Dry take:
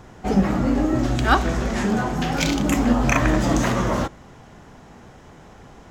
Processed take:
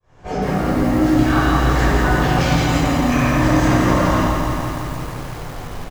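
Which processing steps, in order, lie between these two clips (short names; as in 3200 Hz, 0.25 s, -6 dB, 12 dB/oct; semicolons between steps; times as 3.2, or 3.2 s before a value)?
opening faded in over 1.13 s; tapped delay 94/167 ms -10/-7 dB; compressor, threshold -19 dBFS, peak gain reduction 8.5 dB; high shelf 9300 Hz -9.5 dB; vocal rider within 5 dB 0.5 s; limiter -20 dBFS, peak gain reduction 10.5 dB; bell 210 Hz -13.5 dB 0.42 oct; reverb RT60 1.2 s, pre-delay 10 ms, DRR -8 dB; lo-fi delay 0.168 s, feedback 80%, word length 6-bit, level -5.5 dB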